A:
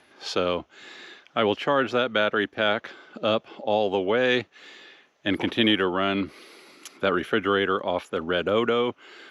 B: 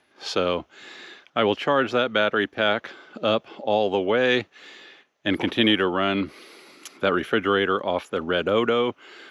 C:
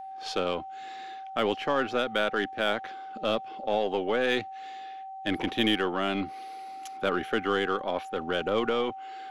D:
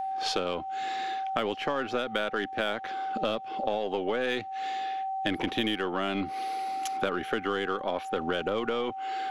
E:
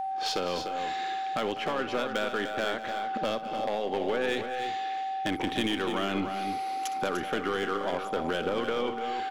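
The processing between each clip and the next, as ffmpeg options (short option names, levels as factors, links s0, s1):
-af "agate=range=0.398:threshold=0.00224:ratio=16:detection=peak,volume=1.19"
-af "aeval=exprs='0.447*(cos(1*acos(clip(val(0)/0.447,-1,1)))-cos(1*PI/2))+0.0141*(cos(8*acos(clip(val(0)/0.447,-1,1)))-cos(8*PI/2))':c=same,aeval=exprs='val(0)+0.0251*sin(2*PI*770*n/s)':c=same,volume=0.501"
-af "acompressor=threshold=0.0178:ratio=6,volume=2.66"
-filter_complex "[0:a]asoftclip=type=hard:threshold=0.0708,asplit=2[s0][s1];[s1]aecho=0:1:62|199|297|327:0.178|0.188|0.398|0.141[s2];[s0][s2]amix=inputs=2:normalize=0"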